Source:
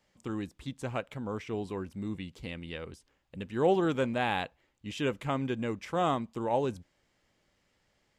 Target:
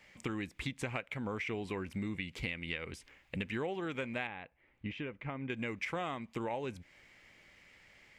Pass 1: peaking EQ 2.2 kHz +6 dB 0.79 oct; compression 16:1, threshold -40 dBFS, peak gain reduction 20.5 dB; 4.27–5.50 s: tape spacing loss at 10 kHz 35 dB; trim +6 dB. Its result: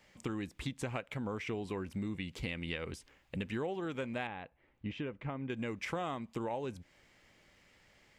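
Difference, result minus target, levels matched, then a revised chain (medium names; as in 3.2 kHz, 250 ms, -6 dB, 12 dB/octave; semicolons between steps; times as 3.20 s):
2 kHz band -3.0 dB
peaking EQ 2.2 kHz +14 dB 0.79 oct; compression 16:1, threshold -40 dBFS, peak gain reduction 21 dB; 4.27–5.50 s: tape spacing loss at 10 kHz 35 dB; trim +6 dB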